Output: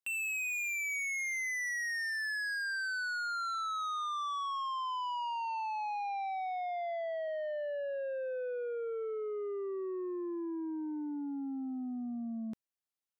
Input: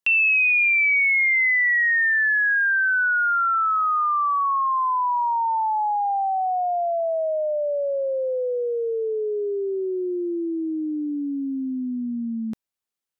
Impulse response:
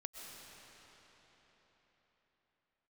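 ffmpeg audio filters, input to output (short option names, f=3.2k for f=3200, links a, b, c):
-filter_complex "[0:a]asoftclip=type=tanh:threshold=-26dB,asettb=1/sr,asplit=3[a][b][c];[a]atrim=end=6.694[d];[b]atrim=start=6.69:end=7.28,asetpts=PTS-STARTPTS,afade=t=in:d=0.004:c=qsin,afade=t=out:st=0.586:d=0.004:c=qsin,highpass=f=96:w=0.5412,highpass=f=96:w=1.3066[e];[c]atrim=start=7.276[f];[d][e]acrossfade=d=0.004:c1=hsin:c2=qsin[g];[g][f]acrossfade=d=0.004:c1=qsin:c2=hsin,volume=-8.5dB"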